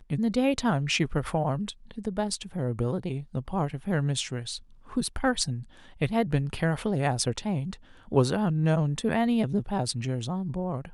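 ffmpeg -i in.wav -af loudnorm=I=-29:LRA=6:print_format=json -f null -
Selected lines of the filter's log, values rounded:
"input_i" : "-28.1",
"input_tp" : "-7.9",
"input_lra" : "3.7",
"input_thresh" : "-38.2",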